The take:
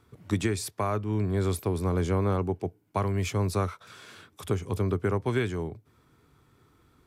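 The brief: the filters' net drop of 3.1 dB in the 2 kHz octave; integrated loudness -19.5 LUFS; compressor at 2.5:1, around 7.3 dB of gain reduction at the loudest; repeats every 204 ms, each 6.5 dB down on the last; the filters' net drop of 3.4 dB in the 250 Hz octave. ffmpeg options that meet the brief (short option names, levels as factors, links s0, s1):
-af "equalizer=f=250:t=o:g=-5,equalizer=f=2000:t=o:g=-4,acompressor=threshold=0.0178:ratio=2.5,aecho=1:1:204|408|612|816|1020|1224:0.473|0.222|0.105|0.0491|0.0231|0.0109,volume=6.68"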